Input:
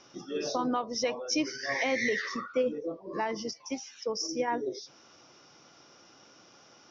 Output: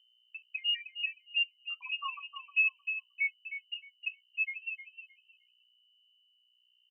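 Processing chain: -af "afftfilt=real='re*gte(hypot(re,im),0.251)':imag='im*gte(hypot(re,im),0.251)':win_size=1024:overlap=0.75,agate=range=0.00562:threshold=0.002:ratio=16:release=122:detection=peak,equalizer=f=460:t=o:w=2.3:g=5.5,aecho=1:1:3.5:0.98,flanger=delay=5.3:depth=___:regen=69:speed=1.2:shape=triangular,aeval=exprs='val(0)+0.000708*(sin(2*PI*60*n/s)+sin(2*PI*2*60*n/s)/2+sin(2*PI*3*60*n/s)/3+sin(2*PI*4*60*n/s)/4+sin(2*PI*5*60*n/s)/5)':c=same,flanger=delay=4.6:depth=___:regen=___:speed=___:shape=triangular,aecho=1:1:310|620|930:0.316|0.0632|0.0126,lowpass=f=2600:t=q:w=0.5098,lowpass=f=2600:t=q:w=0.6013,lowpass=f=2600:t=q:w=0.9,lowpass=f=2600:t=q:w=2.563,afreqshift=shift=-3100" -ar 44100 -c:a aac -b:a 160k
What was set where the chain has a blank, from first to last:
2.7, 4.9, 4, 0.41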